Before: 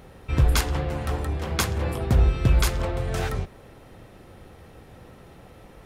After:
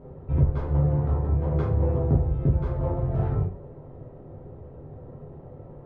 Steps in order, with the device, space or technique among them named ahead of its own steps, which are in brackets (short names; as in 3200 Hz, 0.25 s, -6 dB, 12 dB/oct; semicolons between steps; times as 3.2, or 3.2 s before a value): television next door (compressor 4:1, threshold -23 dBFS, peak gain reduction 9 dB; LPF 580 Hz 12 dB/oct; reverb RT60 0.35 s, pre-delay 7 ms, DRR -4 dB)